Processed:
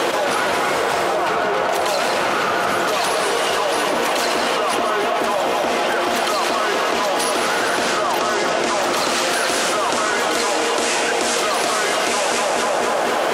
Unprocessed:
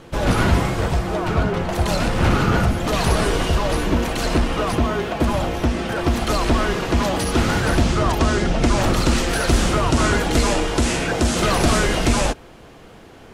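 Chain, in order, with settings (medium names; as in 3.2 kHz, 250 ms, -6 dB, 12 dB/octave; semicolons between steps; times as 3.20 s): Chebyshev high-pass 560 Hz, order 2; two-band feedback delay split 1.7 kHz, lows 244 ms, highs 154 ms, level -6.5 dB; level flattener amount 100%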